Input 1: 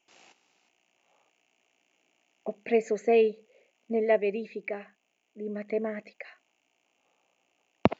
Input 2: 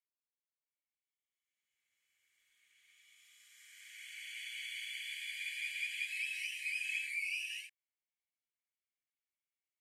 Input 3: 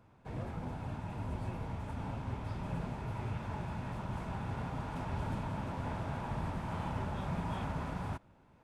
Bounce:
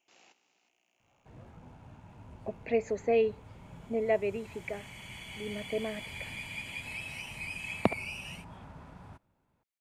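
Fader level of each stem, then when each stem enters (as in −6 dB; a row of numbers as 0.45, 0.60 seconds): −4.0, −1.5, −11.5 decibels; 0.00, 0.75, 1.00 seconds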